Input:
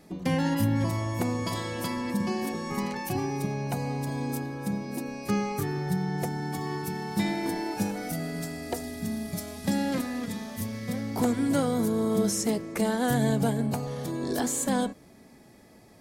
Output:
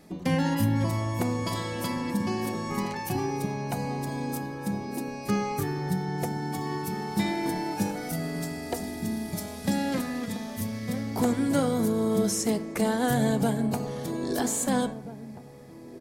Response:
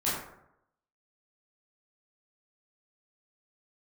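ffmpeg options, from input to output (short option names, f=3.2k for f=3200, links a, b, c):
-filter_complex "[0:a]asplit=2[a][b];[b]adelay=1633,volume=-14dB,highshelf=f=4k:g=-36.7[c];[a][c]amix=inputs=2:normalize=0,asplit=2[d][e];[1:a]atrim=start_sample=2205[f];[e][f]afir=irnorm=-1:irlink=0,volume=-22dB[g];[d][g]amix=inputs=2:normalize=0"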